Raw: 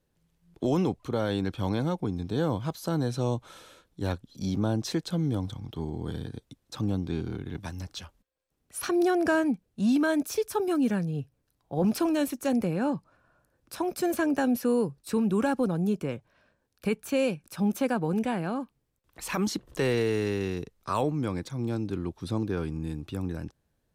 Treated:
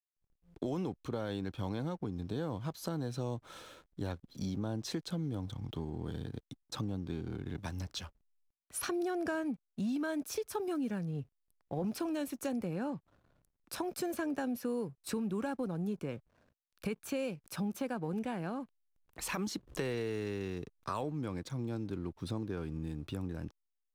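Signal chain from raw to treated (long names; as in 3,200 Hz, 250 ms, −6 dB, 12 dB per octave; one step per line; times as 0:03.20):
downward compressor 3 to 1, threshold −36 dBFS, peak gain reduction 11.5 dB
slack as between gear wheels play −57 dBFS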